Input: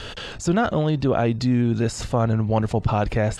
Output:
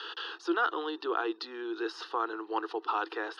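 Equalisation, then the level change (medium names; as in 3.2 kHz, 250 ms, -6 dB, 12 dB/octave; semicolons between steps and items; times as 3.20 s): rippled Chebyshev high-pass 320 Hz, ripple 3 dB; low-pass 4.7 kHz 12 dB/octave; static phaser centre 2.2 kHz, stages 6; 0.0 dB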